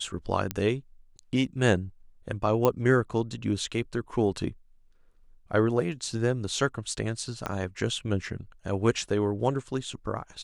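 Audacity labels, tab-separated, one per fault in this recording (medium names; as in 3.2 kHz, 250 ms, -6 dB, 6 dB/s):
0.510000	0.510000	pop -13 dBFS
2.650000	2.650000	pop -10 dBFS
7.460000	7.460000	pop -16 dBFS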